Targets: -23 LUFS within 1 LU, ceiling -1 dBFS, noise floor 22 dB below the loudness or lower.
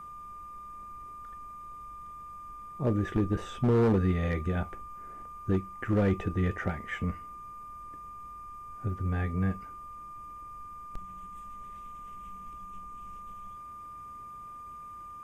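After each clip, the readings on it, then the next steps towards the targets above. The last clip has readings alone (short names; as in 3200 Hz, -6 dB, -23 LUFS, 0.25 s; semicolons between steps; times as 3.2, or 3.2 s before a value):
clipped 0.7%; flat tops at -20.0 dBFS; steady tone 1200 Hz; tone level -42 dBFS; loudness -31.5 LUFS; peak -20.0 dBFS; loudness target -23.0 LUFS
-> clip repair -20 dBFS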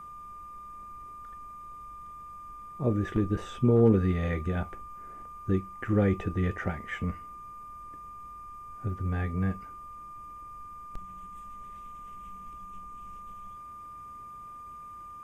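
clipped 0.0%; steady tone 1200 Hz; tone level -42 dBFS
-> notch 1200 Hz, Q 30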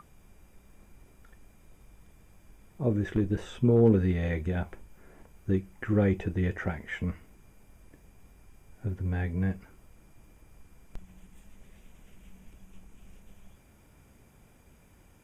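steady tone none; loudness -29.0 LUFS; peak -11.0 dBFS; loudness target -23.0 LUFS
-> gain +6 dB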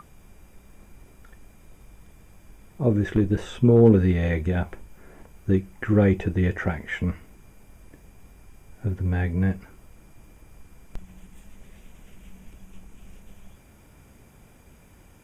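loudness -23.0 LUFS; peak -5.0 dBFS; noise floor -53 dBFS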